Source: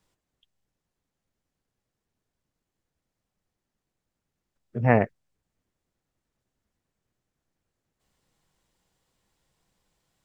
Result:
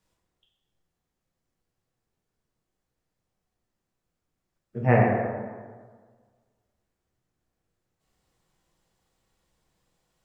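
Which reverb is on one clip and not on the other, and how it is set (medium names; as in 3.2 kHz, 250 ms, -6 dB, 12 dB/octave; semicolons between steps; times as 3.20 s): plate-style reverb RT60 1.6 s, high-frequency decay 0.5×, DRR -3 dB; trim -4 dB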